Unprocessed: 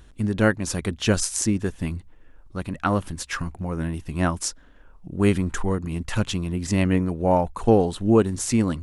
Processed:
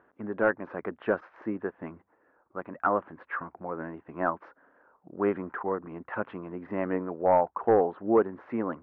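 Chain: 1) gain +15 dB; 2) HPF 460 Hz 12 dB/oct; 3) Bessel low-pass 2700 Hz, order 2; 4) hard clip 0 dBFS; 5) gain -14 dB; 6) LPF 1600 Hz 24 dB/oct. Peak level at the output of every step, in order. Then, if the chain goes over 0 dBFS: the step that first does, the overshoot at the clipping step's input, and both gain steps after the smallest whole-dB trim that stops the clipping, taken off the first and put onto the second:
+10.0, +10.0, +7.5, 0.0, -14.0, -12.5 dBFS; step 1, 7.5 dB; step 1 +7 dB, step 5 -6 dB

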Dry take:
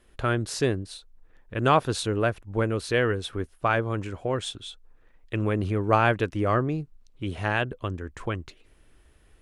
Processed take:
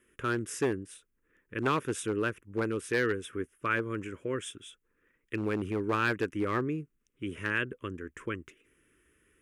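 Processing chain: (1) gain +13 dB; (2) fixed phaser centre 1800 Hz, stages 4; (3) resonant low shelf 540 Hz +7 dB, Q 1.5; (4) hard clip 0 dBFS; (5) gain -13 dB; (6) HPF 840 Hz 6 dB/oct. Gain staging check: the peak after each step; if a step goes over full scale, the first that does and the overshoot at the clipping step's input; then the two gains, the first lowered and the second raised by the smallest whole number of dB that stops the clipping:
+5.5, +0.5, +6.5, 0.0, -13.0, -13.5 dBFS; step 1, 6.5 dB; step 1 +6 dB, step 5 -6 dB

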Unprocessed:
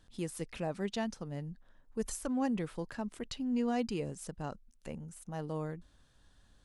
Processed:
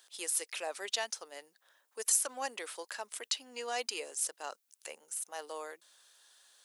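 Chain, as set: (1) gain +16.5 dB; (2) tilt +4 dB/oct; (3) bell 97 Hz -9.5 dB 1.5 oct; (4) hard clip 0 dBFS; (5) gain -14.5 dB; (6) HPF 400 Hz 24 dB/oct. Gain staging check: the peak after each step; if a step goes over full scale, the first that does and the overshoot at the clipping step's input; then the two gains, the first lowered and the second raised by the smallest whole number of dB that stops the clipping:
-5.0, +3.5, +3.5, 0.0, -14.5, -14.5 dBFS; step 2, 3.5 dB; step 1 +12.5 dB, step 5 -10.5 dB

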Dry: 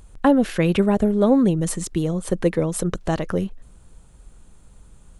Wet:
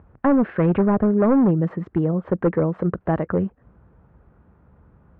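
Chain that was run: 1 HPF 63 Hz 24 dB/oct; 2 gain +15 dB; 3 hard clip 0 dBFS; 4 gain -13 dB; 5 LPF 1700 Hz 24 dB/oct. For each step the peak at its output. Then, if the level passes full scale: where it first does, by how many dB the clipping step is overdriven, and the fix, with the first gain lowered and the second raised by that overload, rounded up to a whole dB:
-5.5, +9.5, 0.0, -13.0, -11.5 dBFS; step 2, 9.5 dB; step 2 +5 dB, step 4 -3 dB

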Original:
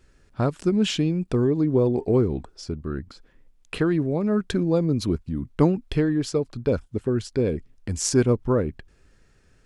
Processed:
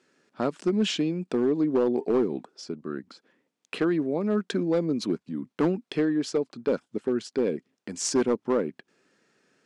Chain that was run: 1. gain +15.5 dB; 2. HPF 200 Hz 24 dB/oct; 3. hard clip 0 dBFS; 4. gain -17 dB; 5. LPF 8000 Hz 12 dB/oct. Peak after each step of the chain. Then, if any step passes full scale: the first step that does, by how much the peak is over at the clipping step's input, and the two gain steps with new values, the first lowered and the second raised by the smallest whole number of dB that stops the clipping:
+9.5, +8.5, 0.0, -17.0, -16.5 dBFS; step 1, 8.5 dB; step 1 +6.5 dB, step 4 -8 dB

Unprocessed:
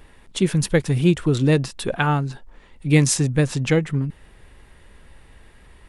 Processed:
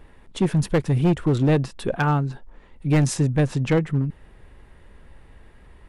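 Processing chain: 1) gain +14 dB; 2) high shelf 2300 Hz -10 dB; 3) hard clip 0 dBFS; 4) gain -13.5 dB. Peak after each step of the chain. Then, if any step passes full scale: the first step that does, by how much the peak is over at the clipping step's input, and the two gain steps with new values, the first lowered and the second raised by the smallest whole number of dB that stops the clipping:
+10.5, +9.5, 0.0, -13.5 dBFS; step 1, 9.5 dB; step 1 +4 dB, step 4 -3.5 dB

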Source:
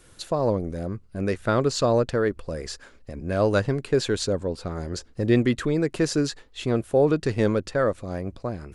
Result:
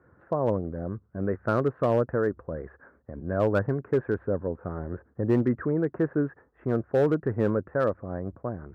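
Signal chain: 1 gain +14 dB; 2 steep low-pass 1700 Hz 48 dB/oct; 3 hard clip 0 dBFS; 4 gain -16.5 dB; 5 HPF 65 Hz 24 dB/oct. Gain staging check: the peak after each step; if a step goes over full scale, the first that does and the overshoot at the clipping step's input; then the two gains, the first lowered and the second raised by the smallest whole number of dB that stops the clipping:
+5.5, +4.5, 0.0, -16.5, -11.5 dBFS; step 1, 4.5 dB; step 1 +9 dB, step 4 -11.5 dB

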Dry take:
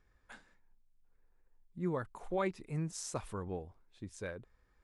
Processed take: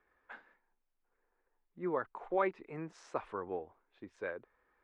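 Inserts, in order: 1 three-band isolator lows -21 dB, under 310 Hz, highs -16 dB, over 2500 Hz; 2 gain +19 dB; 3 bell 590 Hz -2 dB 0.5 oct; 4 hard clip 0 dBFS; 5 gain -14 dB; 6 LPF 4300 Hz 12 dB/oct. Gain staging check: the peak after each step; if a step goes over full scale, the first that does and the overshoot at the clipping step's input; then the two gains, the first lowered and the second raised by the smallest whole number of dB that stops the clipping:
-23.0, -4.0, -4.5, -4.5, -18.5, -18.5 dBFS; no overload

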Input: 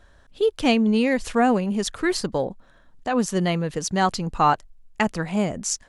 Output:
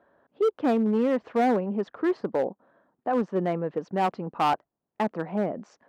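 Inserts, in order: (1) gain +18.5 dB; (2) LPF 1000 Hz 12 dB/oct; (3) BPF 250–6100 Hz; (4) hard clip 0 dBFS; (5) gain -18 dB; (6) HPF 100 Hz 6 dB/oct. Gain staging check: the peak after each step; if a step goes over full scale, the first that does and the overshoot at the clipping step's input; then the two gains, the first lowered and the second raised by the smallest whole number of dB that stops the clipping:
+12.5, +9.5, +9.5, 0.0, -18.0, -15.0 dBFS; step 1, 9.5 dB; step 1 +8.5 dB, step 5 -8 dB

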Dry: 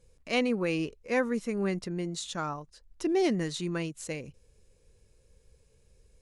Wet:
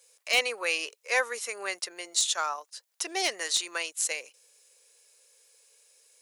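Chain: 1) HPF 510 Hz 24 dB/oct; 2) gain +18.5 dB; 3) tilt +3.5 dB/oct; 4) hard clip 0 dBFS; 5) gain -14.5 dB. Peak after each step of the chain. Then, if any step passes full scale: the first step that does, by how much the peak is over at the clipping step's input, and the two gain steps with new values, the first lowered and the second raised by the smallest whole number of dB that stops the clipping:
-15.5, +3.0, +8.0, 0.0, -14.5 dBFS; step 2, 8.0 dB; step 2 +10.5 dB, step 5 -6.5 dB

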